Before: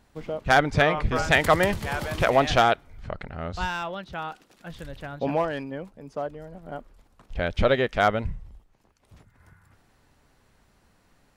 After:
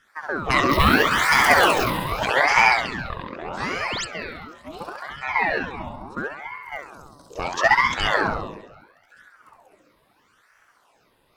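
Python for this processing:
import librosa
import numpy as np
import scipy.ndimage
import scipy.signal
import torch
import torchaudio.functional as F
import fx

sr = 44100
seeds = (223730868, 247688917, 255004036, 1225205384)

y = fx.zero_step(x, sr, step_db=-22.5, at=(0.69, 1.84))
y = fx.high_shelf_res(y, sr, hz=3900.0, db=10.5, q=3.0, at=(6.63, 7.94))
y = fx.notch_comb(y, sr, f0_hz=1300.0)
y = fx.room_flutter(y, sr, wall_m=11.6, rt60_s=1.2)
y = fx.phaser_stages(y, sr, stages=8, low_hz=240.0, high_hz=2300.0, hz=0.87, feedback_pct=25)
y = fx.spec_paint(y, sr, seeds[0], shape='rise', start_s=3.8, length_s=0.25, low_hz=210.0, high_hz=7200.0, level_db=-32.0)
y = fx.ring_lfo(y, sr, carrier_hz=1000.0, swing_pct=60, hz=0.76)
y = y * librosa.db_to_amplitude(6.5)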